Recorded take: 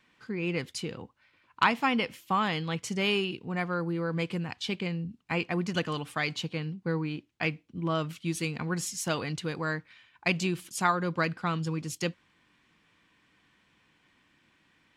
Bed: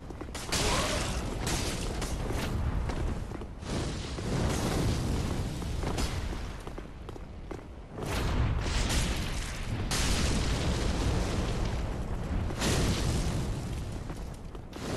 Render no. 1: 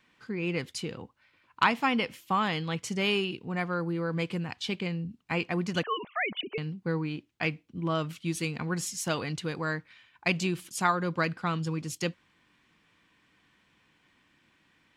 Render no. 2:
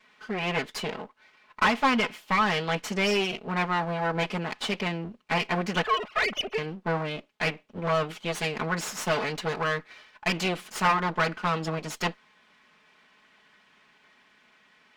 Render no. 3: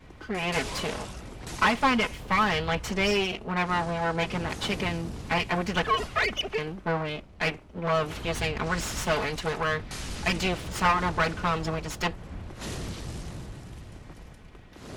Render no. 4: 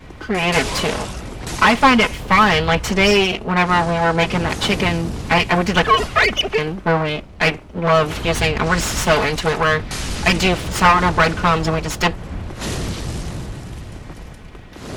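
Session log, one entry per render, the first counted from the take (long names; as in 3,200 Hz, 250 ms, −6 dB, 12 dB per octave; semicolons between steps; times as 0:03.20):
0:05.83–0:06.58: three sine waves on the formant tracks
lower of the sound and its delayed copy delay 4.7 ms; mid-hump overdrive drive 17 dB, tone 2,200 Hz, clips at −11 dBFS
mix in bed −7.5 dB
level +11 dB; brickwall limiter −3 dBFS, peak gain reduction 2.5 dB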